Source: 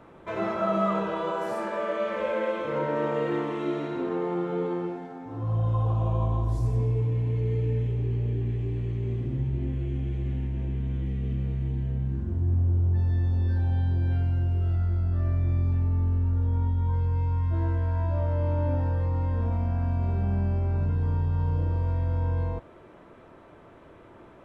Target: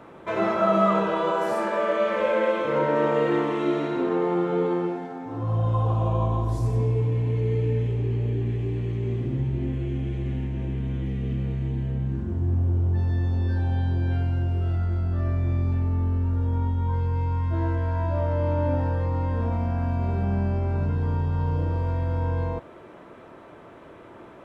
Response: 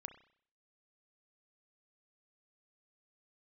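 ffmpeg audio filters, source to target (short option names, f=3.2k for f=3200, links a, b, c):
-af "lowshelf=f=78:g=-11.5,volume=5.5dB"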